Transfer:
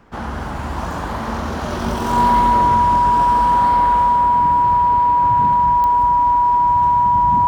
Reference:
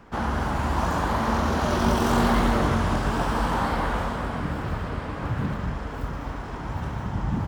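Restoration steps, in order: de-click; band-stop 970 Hz, Q 30

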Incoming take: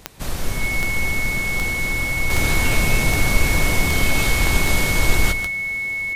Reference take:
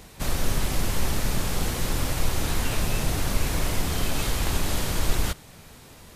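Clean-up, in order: de-click; band-stop 2.2 kHz, Q 30; inverse comb 146 ms -11 dB; trim 0 dB, from 2.30 s -6 dB

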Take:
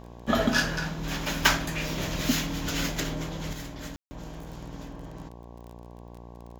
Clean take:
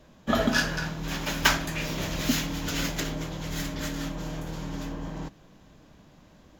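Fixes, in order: de-click; de-hum 59 Hz, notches 19; room tone fill 3.96–4.11 s; gain correction +7.5 dB, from 3.53 s

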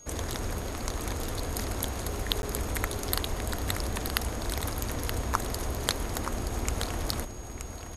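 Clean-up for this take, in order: band-stop 6.6 kHz, Q 30; interpolate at 2.42 s, 11 ms; inverse comb 925 ms -8 dB

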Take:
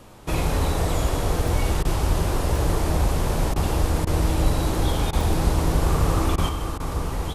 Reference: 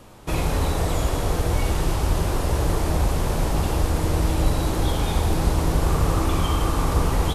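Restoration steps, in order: interpolate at 1.48/2.56/5.21 s, 2.4 ms; interpolate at 1.83/3.54/4.05/5.11/6.36/6.78 s, 18 ms; gain correction +6 dB, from 6.49 s

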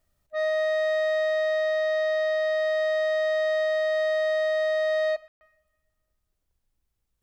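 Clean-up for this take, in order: room tone fill 5.28–5.41 s

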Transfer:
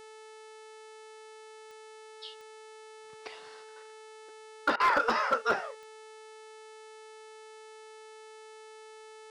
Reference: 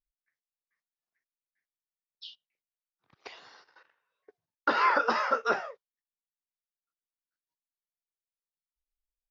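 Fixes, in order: clip repair -18.5 dBFS; de-click; de-hum 436.4 Hz, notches 24; interpolate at 4.76 s, 38 ms

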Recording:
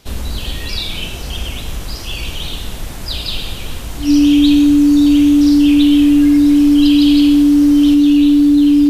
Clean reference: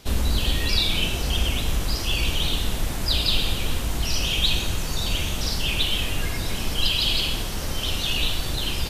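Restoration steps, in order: band-stop 290 Hz, Q 30; gain correction +4 dB, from 7.94 s

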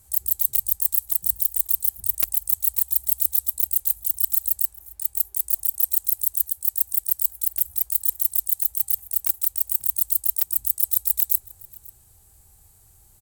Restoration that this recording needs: inverse comb 540 ms -22.5 dB

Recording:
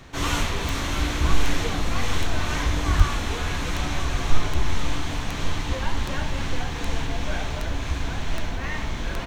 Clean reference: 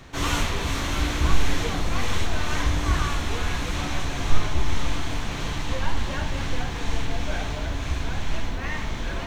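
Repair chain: de-click; 2.97–3.09 s: high-pass 140 Hz 24 dB/octave; inverse comb 1137 ms -10 dB

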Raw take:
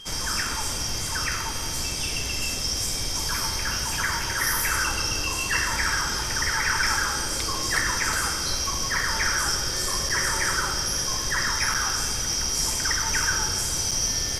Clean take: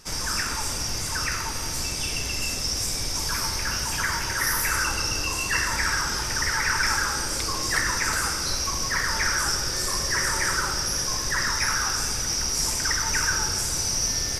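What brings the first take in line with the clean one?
band-stop 3.2 kHz, Q 30; interpolate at 10.09/11.74/13.91 s, 5.8 ms

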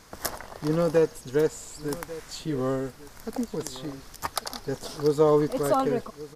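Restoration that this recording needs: inverse comb 1145 ms -17 dB

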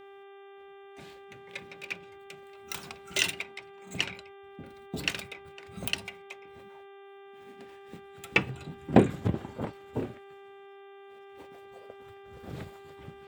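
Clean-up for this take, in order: de-hum 395.9 Hz, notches 9

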